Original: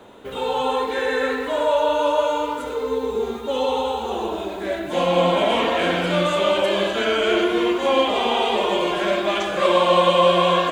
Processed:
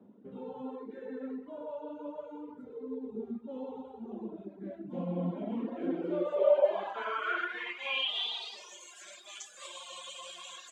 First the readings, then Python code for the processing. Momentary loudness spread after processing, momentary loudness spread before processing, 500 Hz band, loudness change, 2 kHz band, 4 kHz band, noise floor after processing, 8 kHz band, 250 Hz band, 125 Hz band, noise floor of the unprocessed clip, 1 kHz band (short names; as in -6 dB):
16 LU, 10 LU, -15.5 dB, -15.0 dB, -14.5 dB, -14.0 dB, -53 dBFS, under -10 dB, -12.5 dB, -12.5 dB, -30 dBFS, -21.0 dB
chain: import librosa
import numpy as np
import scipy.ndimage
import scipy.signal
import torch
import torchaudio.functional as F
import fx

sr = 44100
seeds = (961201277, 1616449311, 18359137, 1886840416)

y = scipy.signal.sosfilt(scipy.signal.butter(2, 97.0, 'highpass', fs=sr, output='sos'), x)
y = fx.filter_sweep_bandpass(y, sr, from_hz=210.0, to_hz=7100.0, start_s=5.65, end_s=8.89, q=3.9)
y = fx.dereverb_blind(y, sr, rt60_s=1.5)